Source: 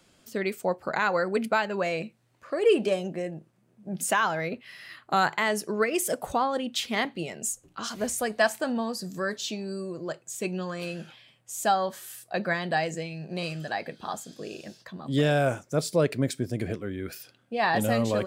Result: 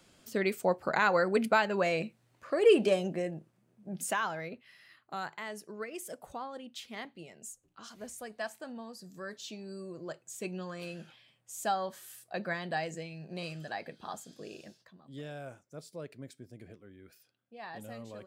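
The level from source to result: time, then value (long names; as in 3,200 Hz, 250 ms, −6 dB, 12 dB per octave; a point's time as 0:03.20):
0:03.12 −1 dB
0:04.32 −8.5 dB
0:05.03 −15 dB
0:08.87 −15 dB
0:10.00 −7.5 dB
0:14.63 −7.5 dB
0:15.05 −20 dB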